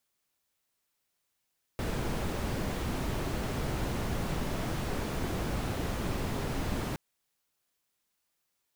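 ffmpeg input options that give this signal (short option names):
-f lavfi -i "anoisesrc=c=brown:a=0.117:d=5.17:r=44100:seed=1"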